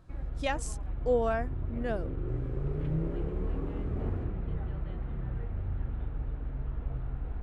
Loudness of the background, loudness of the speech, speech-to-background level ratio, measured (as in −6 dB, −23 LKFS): −36.5 LKFS, −33.5 LKFS, 3.0 dB